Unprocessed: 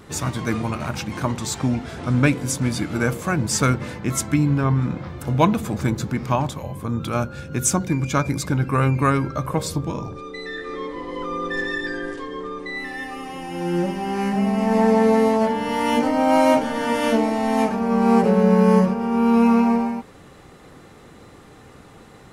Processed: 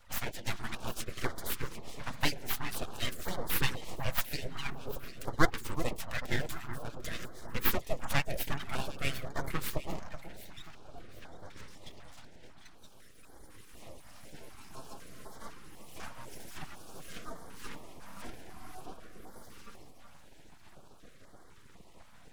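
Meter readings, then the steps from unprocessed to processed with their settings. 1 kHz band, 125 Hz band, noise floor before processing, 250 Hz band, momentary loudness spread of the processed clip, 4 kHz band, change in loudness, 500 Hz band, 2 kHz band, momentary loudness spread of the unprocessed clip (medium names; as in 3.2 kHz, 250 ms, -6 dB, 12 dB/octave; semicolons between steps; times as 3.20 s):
-19.0 dB, -19.5 dB, -46 dBFS, -25.0 dB, 21 LU, -7.5 dB, -16.5 dB, -21.0 dB, -11.0 dB, 14 LU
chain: harmonic-percussive separation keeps percussive; flange 0.37 Hz, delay 1.8 ms, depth 5.8 ms, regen -22%; full-wave rectifier; echo whose repeats swap between lows and highs 374 ms, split 1.5 kHz, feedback 52%, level -8 dB; step-sequenced notch 4 Hz 390–2600 Hz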